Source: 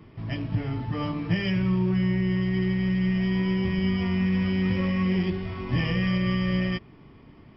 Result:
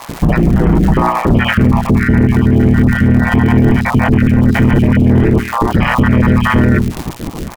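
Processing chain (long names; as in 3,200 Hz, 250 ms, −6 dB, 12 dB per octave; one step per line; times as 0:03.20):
time-frequency cells dropped at random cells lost 39%
low-pass filter 1,500 Hz 12 dB per octave
mains-hum notches 60/120/180/240/300/360 Hz
soft clipping −22 dBFS, distortion −17 dB
surface crackle 200 per second −45 dBFS
pitch-shifted copies added −4 semitones −1 dB
ring modulation 60 Hz
boost into a limiter +32 dB
level −1 dB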